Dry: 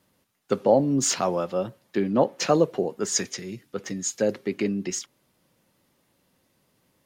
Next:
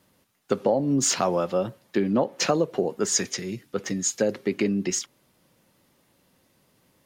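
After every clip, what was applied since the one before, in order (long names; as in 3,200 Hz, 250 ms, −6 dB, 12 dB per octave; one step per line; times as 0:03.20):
downward compressor 5 to 1, threshold −22 dBFS, peak gain reduction 9 dB
level +3.5 dB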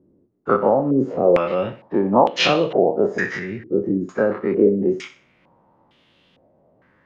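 every bin's largest magnitude spread in time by 60 ms
feedback echo with a high-pass in the loop 62 ms, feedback 33%, high-pass 190 Hz, level −12 dB
low-pass on a step sequencer 2.2 Hz 350–3,200 Hz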